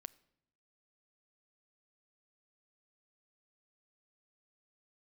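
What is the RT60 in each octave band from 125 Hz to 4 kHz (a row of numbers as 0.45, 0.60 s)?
1.0, 0.95, 0.80, 0.75, 0.65, 0.60 s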